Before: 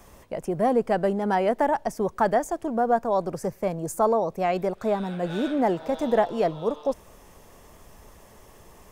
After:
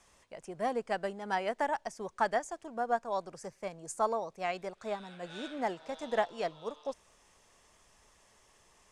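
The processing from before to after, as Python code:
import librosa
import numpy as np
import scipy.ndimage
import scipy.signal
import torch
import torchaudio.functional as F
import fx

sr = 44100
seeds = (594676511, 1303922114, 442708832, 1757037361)

y = scipy.signal.sosfilt(scipy.signal.butter(4, 9100.0, 'lowpass', fs=sr, output='sos'), x)
y = fx.tilt_shelf(y, sr, db=-7.0, hz=970.0)
y = fx.upward_expand(y, sr, threshold_db=-33.0, expansion=1.5)
y = F.gain(torch.from_numpy(y), -5.5).numpy()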